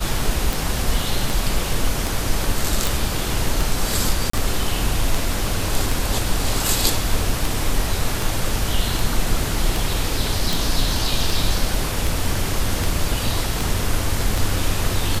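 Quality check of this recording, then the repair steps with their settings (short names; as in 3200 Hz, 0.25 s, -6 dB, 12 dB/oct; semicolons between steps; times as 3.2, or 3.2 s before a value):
tick 78 rpm
2.87 pop
4.3–4.33 gap 34 ms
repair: de-click; interpolate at 4.3, 34 ms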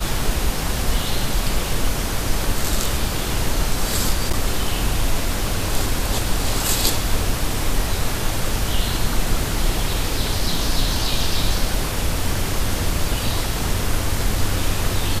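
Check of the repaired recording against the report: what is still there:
none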